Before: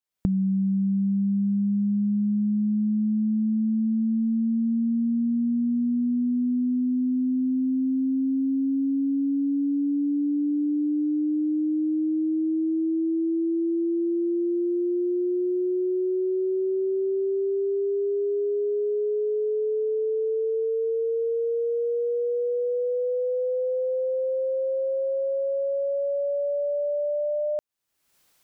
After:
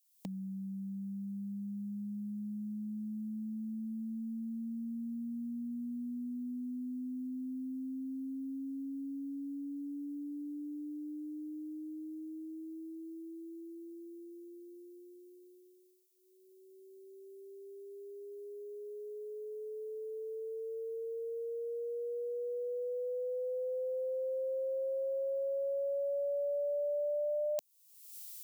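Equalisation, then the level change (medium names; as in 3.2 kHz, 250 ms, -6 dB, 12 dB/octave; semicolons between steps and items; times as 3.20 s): differentiator; static phaser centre 370 Hz, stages 6; +14.0 dB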